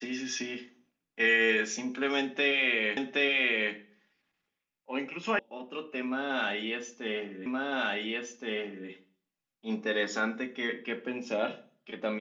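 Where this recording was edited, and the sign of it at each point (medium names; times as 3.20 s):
2.97 s: repeat of the last 0.77 s
5.39 s: sound stops dead
7.46 s: repeat of the last 1.42 s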